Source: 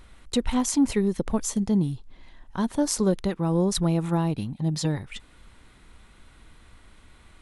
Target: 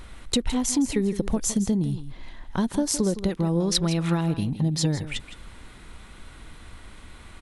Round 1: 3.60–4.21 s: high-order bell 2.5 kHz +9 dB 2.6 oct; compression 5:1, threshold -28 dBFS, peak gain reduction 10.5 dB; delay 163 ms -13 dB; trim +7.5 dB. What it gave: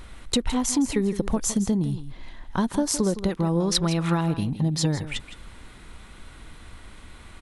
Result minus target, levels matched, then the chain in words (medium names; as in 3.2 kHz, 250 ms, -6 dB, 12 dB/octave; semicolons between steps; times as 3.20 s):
1 kHz band +3.5 dB
3.60–4.21 s: high-order bell 2.5 kHz +9 dB 2.6 oct; compression 5:1, threshold -28 dBFS, peak gain reduction 10.5 dB; dynamic bell 1.1 kHz, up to -5 dB, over -49 dBFS, Q 1.2; delay 163 ms -13 dB; trim +7.5 dB